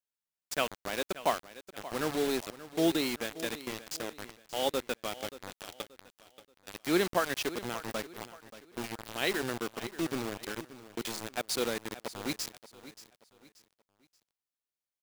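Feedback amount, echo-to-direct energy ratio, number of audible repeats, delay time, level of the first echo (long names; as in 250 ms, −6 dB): 34%, −15.0 dB, 3, 580 ms, −15.5 dB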